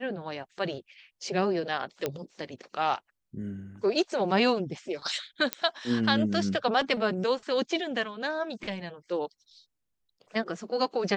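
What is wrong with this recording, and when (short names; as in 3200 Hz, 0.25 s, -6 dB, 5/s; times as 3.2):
2.06 pop -14 dBFS
5.53 pop -10 dBFS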